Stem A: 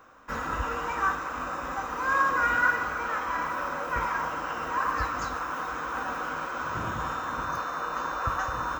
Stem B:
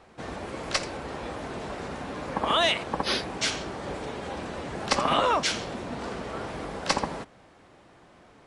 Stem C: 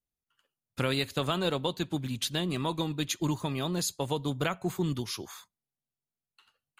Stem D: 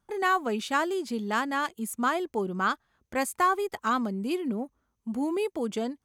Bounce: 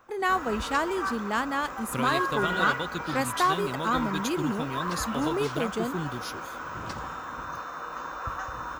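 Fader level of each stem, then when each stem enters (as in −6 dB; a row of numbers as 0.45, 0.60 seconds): −5.0, −16.5, −3.0, −0.5 decibels; 0.00, 0.00, 1.15, 0.00 seconds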